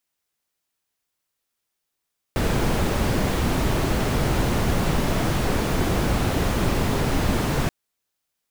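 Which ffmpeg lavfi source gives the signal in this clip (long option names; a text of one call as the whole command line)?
ffmpeg -f lavfi -i "anoisesrc=color=brown:amplitude=0.417:duration=5.33:sample_rate=44100:seed=1" out.wav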